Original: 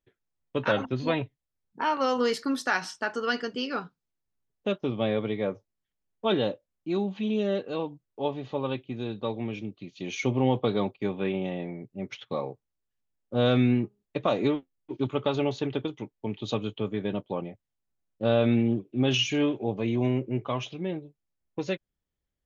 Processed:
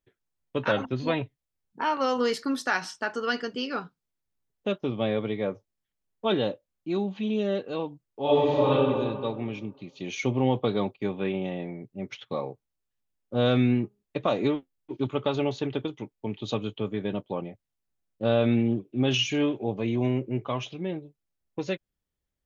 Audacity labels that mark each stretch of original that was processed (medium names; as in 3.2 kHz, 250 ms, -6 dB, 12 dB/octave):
8.230000	8.720000	reverb throw, RT60 1.7 s, DRR -9.5 dB